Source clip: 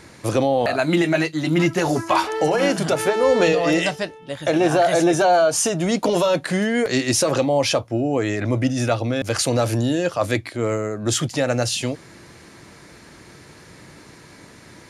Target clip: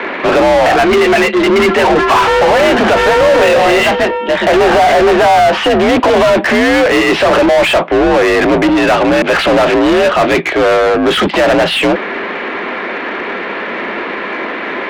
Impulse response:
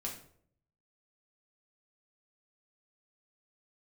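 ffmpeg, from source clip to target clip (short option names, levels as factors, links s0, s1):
-filter_complex "[0:a]highpass=f=160:t=q:w=0.5412,highpass=f=160:t=q:w=1.307,lowpass=f=3200:t=q:w=0.5176,lowpass=f=3200:t=q:w=0.7071,lowpass=f=3200:t=q:w=1.932,afreqshift=51,acontrast=76,asplit=2[s0][s1];[s1]highpass=f=720:p=1,volume=35.5,asoftclip=type=tanh:threshold=0.708[s2];[s0][s2]amix=inputs=2:normalize=0,lowpass=f=2400:p=1,volume=0.501"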